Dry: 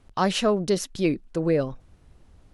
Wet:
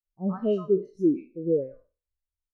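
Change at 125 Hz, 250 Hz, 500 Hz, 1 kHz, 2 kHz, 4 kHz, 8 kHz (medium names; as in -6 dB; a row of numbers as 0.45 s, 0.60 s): -6.0 dB, -1.0 dB, -1.5 dB, under -15 dB, under -20 dB, under -20 dB, under -30 dB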